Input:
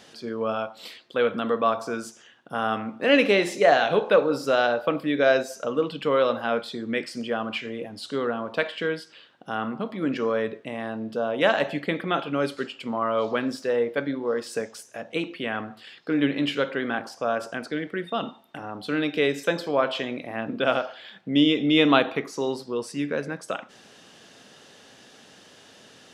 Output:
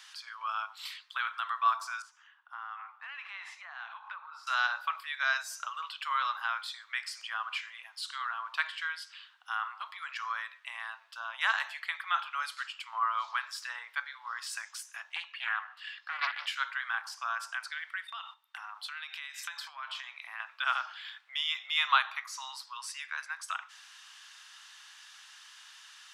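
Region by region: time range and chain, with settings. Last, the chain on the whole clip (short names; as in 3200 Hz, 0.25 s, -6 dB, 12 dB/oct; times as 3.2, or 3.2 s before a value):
2.02–4.47 band-pass 980 Hz, Q 1.2 + compressor 5:1, threshold -34 dBFS
15.13–16.47 high shelf 6500 Hz -10.5 dB + small resonant body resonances 250/390/1700/2800 Hz, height 12 dB, ringing for 40 ms + Doppler distortion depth 0.43 ms
18.07–20.4 compressor 5:1, threshold -31 dBFS + gate -46 dBFS, range -10 dB
whole clip: dynamic EQ 2800 Hz, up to -6 dB, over -40 dBFS, Q 1.3; steep high-pass 980 Hz 48 dB/oct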